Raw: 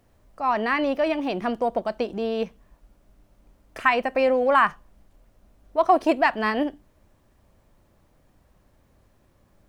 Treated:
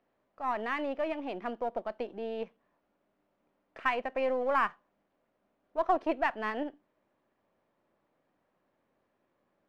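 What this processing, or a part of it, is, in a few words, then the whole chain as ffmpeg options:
crystal radio: -af "highpass=270,lowpass=2800,aeval=exprs='if(lt(val(0),0),0.708*val(0),val(0))':c=same,volume=0.398"

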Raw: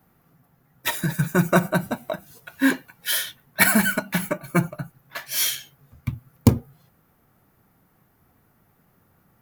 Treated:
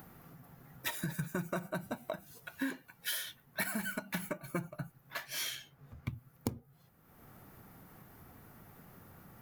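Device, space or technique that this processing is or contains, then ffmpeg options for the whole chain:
upward and downward compression: -filter_complex "[0:a]asettb=1/sr,asplit=3[s0][s1][s2];[s0]atrim=end=5.264[s3];[s1]atrim=start=5.26:end=6.08,asetpts=PTS-STARTPTS,afade=t=in:d=0.004:c=qsin,afade=t=out:st=0.816:d=0.004:c=qsin,highshelf=f=5100:g=-10.5[s4];[s2]atrim=start=6.076[s5];[s3][s4]acrossfade=d=0.004:c1=hsin:c2=qsin[s6];[s6][s5]acrossfade=d=0.004:c1=qsin:c2=hsin,acompressor=mode=upward:threshold=0.0141:ratio=2.5,acompressor=threshold=0.0447:ratio=8,volume=0.473"

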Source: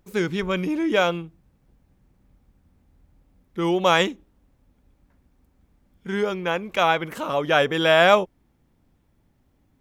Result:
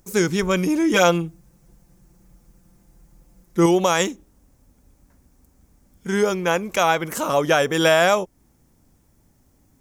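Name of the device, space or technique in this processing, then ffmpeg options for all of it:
over-bright horn tweeter: -filter_complex "[0:a]highshelf=f=4700:t=q:w=1.5:g=9.5,alimiter=limit=0.266:level=0:latency=1:release=289,asettb=1/sr,asplit=3[s0][s1][s2];[s0]atrim=end=0.934[s3];[s1]atrim=start=0.93:end=3.66,asetpts=PTS-STARTPTS,afade=t=in:d=0.004:c=qsin,afade=t=out:st=2.726:d=0.004:c=qsin,aecho=1:1:5.8:0.82,atrim=end_sample=120393[s4];[s2]atrim=start=3.656[s5];[s3][s4]acrossfade=d=0.004:c1=hsin:c2=qsin[s6];[s6][s5]acrossfade=d=0.004:c1=qsin:c2=hsin,volume=1.68"

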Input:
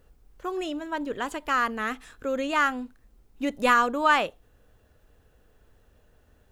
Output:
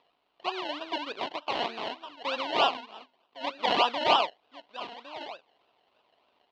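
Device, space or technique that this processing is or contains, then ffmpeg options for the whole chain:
circuit-bent sampling toy: -filter_complex "[0:a]asettb=1/sr,asplit=3[s0][s1][s2];[s0]atrim=end=2.774[s3];[s1]atrim=start=2.77:end=3.7,asetpts=PTS-STARTPTS,afade=t=in:d=0.004:c=qsin,afade=t=out:st=0.926:d=0.004:c=qsin,lowshelf=f=240:g=-11[s4];[s2]atrim=start=3.696[s5];[s3][s4]acrossfade=d=0.004:c1=hsin:c2=qsin[s6];[s6][s5]acrossfade=d=0.004:c1=qsin:c2=hsin,asplit=2[s7][s8];[s8]adelay=1108,volume=0.224,highshelf=f=4000:g=-24.9[s9];[s7][s9]amix=inputs=2:normalize=0,acrusher=samples=29:mix=1:aa=0.000001:lfo=1:lforange=17.4:lforate=3.3,highpass=480,equalizer=f=490:t=q:w=4:g=-5,equalizer=f=700:t=q:w=4:g=5,equalizer=f=1000:t=q:w=4:g=6,equalizer=f=1700:t=q:w=4:g=-5,equalizer=f=2900:t=q:w=4:g=9,equalizer=f=4100:t=q:w=4:g=6,lowpass=f=4300:w=0.5412,lowpass=f=4300:w=1.3066,volume=0.841"

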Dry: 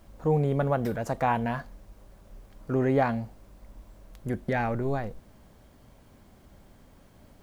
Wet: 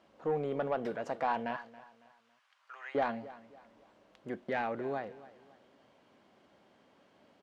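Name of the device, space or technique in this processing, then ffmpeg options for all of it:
intercom: -filter_complex "[0:a]asettb=1/sr,asplit=3[s0][s1][s2];[s0]atrim=end=1.564[s3];[s1]atrim=start=1.56:end=2.95,asetpts=PTS-STARTPTS,afade=t=in:d=0.004:c=qsin,afade=t=out:st=1.386:d=0.004:c=qsin,highpass=f=1100:w=0.5412,highpass=f=1100:w=1.3066[s4];[s2]atrim=start=2.946[s5];[s3][s4]acrossfade=d=0.004:c1=hsin:c2=qsin[s6];[s6][s5]acrossfade=d=0.004:c1=qsin:c2=hsin,highpass=300,lowpass=4300,equalizer=f=2900:t=o:w=0.28:g=4,asoftclip=type=tanh:threshold=0.119,aecho=1:1:277|554|831:0.126|0.0453|0.0163,volume=0.631"

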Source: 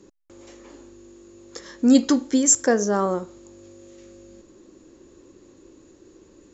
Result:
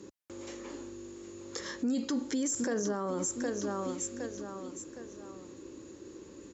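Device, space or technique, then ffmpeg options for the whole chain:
podcast mastering chain: -af "highpass=65,equalizer=f=700:w=5.7:g=-5,aecho=1:1:763|1526|2289:0.178|0.0676|0.0257,deesser=0.35,acompressor=threshold=0.0501:ratio=2.5,alimiter=level_in=1.41:limit=0.0631:level=0:latency=1:release=33,volume=0.708,volume=1.41" -ar 48000 -c:a libmp3lame -b:a 96k

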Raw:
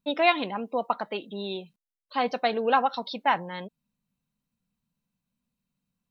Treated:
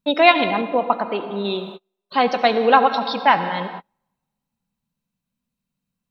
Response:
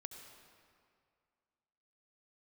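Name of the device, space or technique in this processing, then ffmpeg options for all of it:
keyed gated reverb: -filter_complex "[0:a]asplit=3[s0][s1][s2];[1:a]atrim=start_sample=2205[s3];[s1][s3]afir=irnorm=-1:irlink=0[s4];[s2]apad=whole_len=269295[s5];[s4][s5]sidechaingate=range=0.0112:threshold=0.00224:ratio=16:detection=peak,volume=2.66[s6];[s0][s6]amix=inputs=2:normalize=0,asettb=1/sr,asplit=3[s7][s8][s9];[s7]atrim=end=0.614[s10];[s8]atrim=start=0.61:end=1.45,asetpts=PTS-STARTPTS,afade=t=in:d=0.004:c=qsin,afade=t=out:st=0.836:d=0.004:c=qsin,highshelf=f=2700:g=-10.5[s11];[s9]atrim=start=1.446[s12];[s10][s11]acrossfade=d=0.004:c1=hsin:c2=qsin[s13];[s13][s12]acrossfade=d=0.004:c1=qsin:c2=hsin,volume=1.12"

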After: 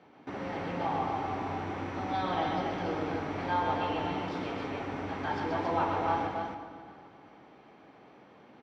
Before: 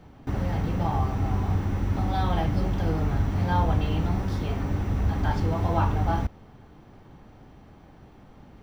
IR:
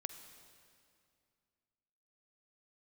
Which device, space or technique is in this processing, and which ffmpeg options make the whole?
station announcement: -filter_complex "[0:a]highpass=310,lowpass=4300,equalizer=f=2300:t=o:w=0.22:g=4,aecho=1:1:128.3|277:0.562|0.631[s0];[1:a]atrim=start_sample=2205[s1];[s0][s1]afir=irnorm=-1:irlink=0"

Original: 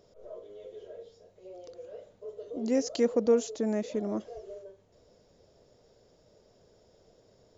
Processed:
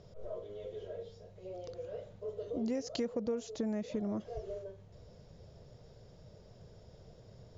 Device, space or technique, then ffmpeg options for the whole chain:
jukebox: -af "lowpass=5900,lowshelf=f=200:t=q:w=1.5:g=9,acompressor=threshold=0.0158:ratio=5,volume=1.41"

